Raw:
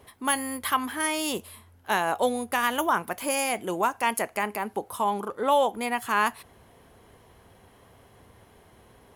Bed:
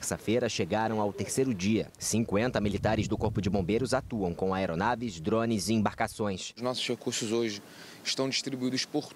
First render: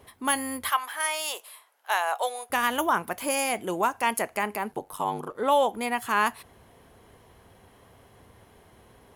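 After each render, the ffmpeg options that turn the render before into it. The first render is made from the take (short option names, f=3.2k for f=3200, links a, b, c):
-filter_complex "[0:a]asettb=1/sr,asplit=3[a][b][c];[a]atrim=end=0.694[d];[b]atrim=start=0.69:end=2.5,asetpts=PTS-STARTPTS,afade=t=in:d=0.004:c=qsin,afade=t=out:st=1.806:d=0.004:c=qsin,highpass=f=600:w=0.5412,highpass=f=600:w=1.3066[e];[c]atrim=start=2.496[f];[d][e]acrossfade=d=0.004:c1=hsin:c2=qsin[g];[g][f]acrossfade=d=0.004:c1=qsin:c2=hsin,asettb=1/sr,asplit=3[h][i][j];[h]atrim=end=4.714[k];[i]atrim=start=4.71:end=5.35,asetpts=PTS-STARTPTS,afade=t=in:d=0.004:c=qsin,afade=t=out:st=0.636:d=0.004:c=qsin,aeval=exprs='val(0)*sin(2*PI*48*n/s)':c=same[l];[j]atrim=start=5.346[m];[k][l]acrossfade=d=0.004:c1=hsin:c2=qsin[n];[n][m]acrossfade=d=0.004:c1=qsin:c2=hsin"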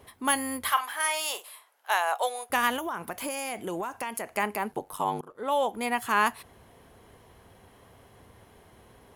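-filter_complex "[0:a]asettb=1/sr,asplit=3[a][b][c];[a]atrim=end=0.614[d];[b]atrim=start=0.61:end=1.5,asetpts=PTS-STARTPTS,afade=t=in:d=0.004:c=qsin,afade=t=out:st=0.886:d=0.004:c=qsin,asplit=2[e][f];[f]adelay=44,volume=-10.5dB[g];[e][g]amix=inputs=2:normalize=0,atrim=end_sample=39249[h];[c]atrim=start=1.496[i];[d][h]acrossfade=d=0.004:c1=hsin:c2=qsin[j];[j][i]acrossfade=d=0.004:c1=qsin:c2=hsin,asettb=1/sr,asplit=3[k][l][m];[k]atrim=end=2.764[n];[l]atrim=start=2.76:end=4.31,asetpts=PTS-STARTPTS,afade=t=in:d=0.004:c=qsin,afade=t=out:st=1.546:d=0.004:c=qsin,acompressor=threshold=-28dB:ratio=12:attack=3.2:release=140:knee=1:detection=peak[o];[m]atrim=start=4.306[p];[n][o]acrossfade=d=0.004:c1=hsin:c2=qsin[q];[q][p]acrossfade=d=0.004:c1=qsin:c2=hsin,asplit=2[r][s];[r]atrim=end=5.21,asetpts=PTS-STARTPTS,afade=t=out:st=5.206:d=0.004:c=hsin:silence=0.177828[t];[s]atrim=start=5.21,asetpts=PTS-STARTPTS,afade=t=in:d=0.7:silence=0.177828[u];[t][u]concat=n=2:v=0:a=1"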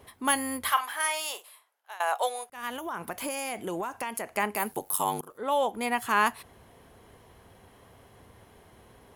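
-filter_complex "[0:a]asettb=1/sr,asplit=3[a][b][c];[a]atrim=end=4.564[d];[b]atrim=start=4.56:end=5.38,asetpts=PTS-STARTPTS,afade=t=in:d=0.004:c=qsin,afade=t=out:st=0.816:d=0.004:c=qsin,aemphasis=mode=production:type=75fm[e];[c]atrim=start=5.376[f];[d][e]acrossfade=d=0.004:c1=hsin:c2=qsin[g];[g][f]acrossfade=d=0.004:c1=qsin:c2=hsin,asplit=3[h][i][j];[h]atrim=end=2,asetpts=PTS-STARTPTS,afade=t=out:st=0.96:d=1.04:silence=0.0794328[k];[i]atrim=start=2:end=2.5,asetpts=PTS-STARTPTS,afade=t=in:d=0.004:c=hsin:silence=0.0794328,afade=t=out:st=0.496:d=0.004:c=hsin[l];[j]atrim=start=2.5,asetpts=PTS-STARTPTS,afade=t=in:d=0.5[m];[k][l][m]concat=n=3:v=0:a=1"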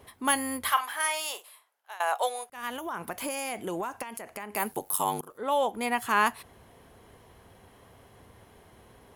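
-filter_complex "[0:a]asettb=1/sr,asplit=3[a][b][c];[a]atrim=end=4.024[d];[b]atrim=start=4.02:end=4.55,asetpts=PTS-STARTPTS,afade=t=in:d=0.004:c=qsin,afade=t=out:st=0.526:d=0.004:c=qsin,acompressor=threshold=-35dB:ratio=5:attack=3.2:release=140:knee=1:detection=peak[e];[c]atrim=start=4.546[f];[d][e]acrossfade=d=0.004:c1=hsin:c2=qsin[g];[g][f]acrossfade=d=0.004:c1=qsin:c2=hsin"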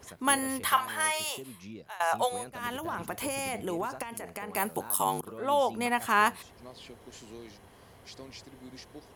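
-filter_complex "[1:a]volume=-17.5dB[a];[0:a][a]amix=inputs=2:normalize=0"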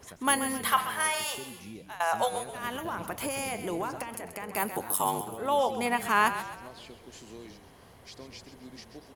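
-filter_complex "[0:a]asplit=6[a][b][c][d][e][f];[b]adelay=132,afreqshift=-34,volume=-11dB[g];[c]adelay=264,afreqshift=-68,volume=-17.9dB[h];[d]adelay=396,afreqshift=-102,volume=-24.9dB[i];[e]adelay=528,afreqshift=-136,volume=-31.8dB[j];[f]adelay=660,afreqshift=-170,volume=-38.7dB[k];[a][g][h][i][j][k]amix=inputs=6:normalize=0"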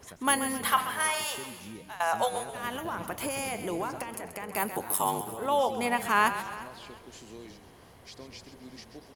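-af "aecho=1:1:352|704:0.119|0.0333"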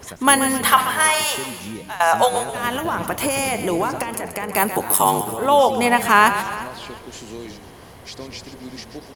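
-af "volume=11.5dB,alimiter=limit=-1dB:level=0:latency=1"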